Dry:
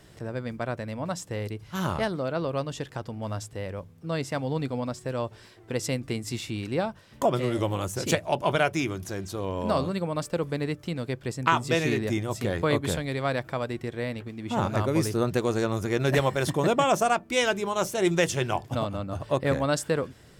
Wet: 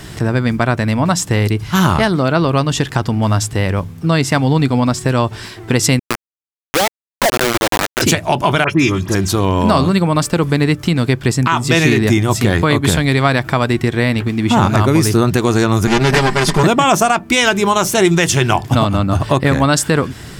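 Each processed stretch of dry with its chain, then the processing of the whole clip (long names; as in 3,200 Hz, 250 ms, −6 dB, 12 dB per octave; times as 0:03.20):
0:05.99–0:08.02: four-pole ladder band-pass 560 Hz, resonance 40% + parametric band 400 Hz −6.5 dB 0.39 octaves + log-companded quantiser 2 bits
0:08.64–0:09.15: high-shelf EQ 9,400 Hz −11.5 dB + notch comb filter 730 Hz + all-pass dispersion highs, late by 60 ms, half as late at 2,400 Hz
0:15.87–0:16.63: lower of the sound and its delayed copy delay 5 ms + Bessel low-pass filter 10,000 Hz, order 4 + parametric band 4,800 Hz +7.5 dB 0.2 octaves
whole clip: parametric band 530 Hz −9 dB 0.58 octaves; downward compressor 2 to 1, threshold −34 dBFS; boost into a limiter +22.5 dB; level −1 dB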